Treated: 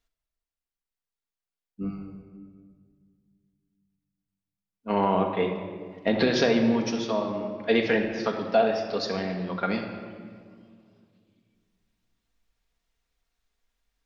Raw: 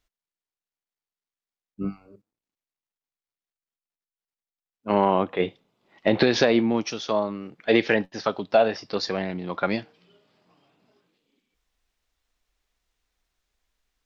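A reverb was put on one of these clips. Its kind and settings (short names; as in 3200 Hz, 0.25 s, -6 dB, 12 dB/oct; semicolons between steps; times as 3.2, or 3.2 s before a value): shoebox room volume 2900 m³, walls mixed, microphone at 1.7 m; gain -4.5 dB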